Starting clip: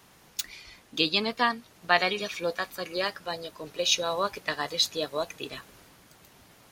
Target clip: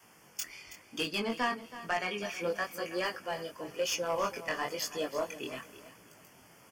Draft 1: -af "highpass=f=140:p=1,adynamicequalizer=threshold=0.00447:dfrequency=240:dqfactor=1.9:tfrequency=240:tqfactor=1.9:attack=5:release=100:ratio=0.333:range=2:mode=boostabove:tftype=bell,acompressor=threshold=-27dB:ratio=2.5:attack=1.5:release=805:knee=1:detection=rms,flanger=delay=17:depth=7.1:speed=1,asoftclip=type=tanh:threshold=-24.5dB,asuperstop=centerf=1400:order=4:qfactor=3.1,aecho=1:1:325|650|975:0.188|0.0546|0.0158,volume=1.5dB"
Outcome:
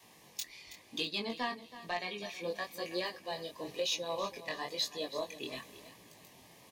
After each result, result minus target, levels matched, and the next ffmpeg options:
compressor: peak gain reduction +6 dB; 4000 Hz band +4.5 dB
-af "highpass=f=140:p=1,adynamicequalizer=threshold=0.00447:dfrequency=240:dqfactor=1.9:tfrequency=240:tqfactor=1.9:attack=5:release=100:ratio=0.333:range=2:mode=boostabove:tftype=bell,acompressor=threshold=-17dB:ratio=2.5:attack=1.5:release=805:knee=1:detection=rms,flanger=delay=17:depth=7.1:speed=1,asoftclip=type=tanh:threshold=-24.5dB,asuperstop=centerf=1400:order=4:qfactor=3.1,aecho=1:1:325|650|975:0.188|0.0546|0.0158,volume=1.5dB"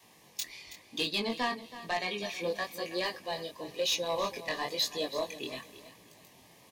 4000 Hz band +4.5 dB
-af "highpass=f=140:p=1,adynamicequalizer=threshold=0.00447:dfrequency=240:dqfactor=1.9:tfrequency=240:tqfactor=1.9:attack=5:release=100:ratio=0.333:range=2:mode=boostabove:tftype=bell,acompressor=threshold=-17dB:ratio=2.5:attack=1.5:release=805:knee=1:detection=rms,flanger=delay=17:depth=7.1:speed=1,asoftclip=type=tanh:threshold=-24.5dB,asuperstop=centerf=3900:order=4:qfactor=3.1,aecho=1:1:325|650|975:0.188|0.0546|0.0158,volume=1.5dB"

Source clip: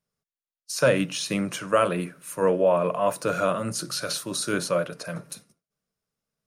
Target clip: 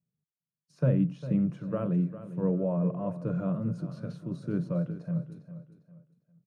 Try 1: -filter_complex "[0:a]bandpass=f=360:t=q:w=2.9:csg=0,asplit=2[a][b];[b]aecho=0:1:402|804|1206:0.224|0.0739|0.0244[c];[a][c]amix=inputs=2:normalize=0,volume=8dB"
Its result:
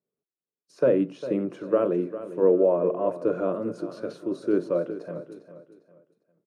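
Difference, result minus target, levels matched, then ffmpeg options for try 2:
125 Hz band -16.0 dB
-filter_complex "[0:a]bandpass=f=150:t=q:w=2.9:csg=0,asplit=2[a][b];[b]aecho=0:1:402|804|1206:0.224|0.0739|0.0244[c];[a][c]amix=inputs=2:normalize=0,volume=8dB"

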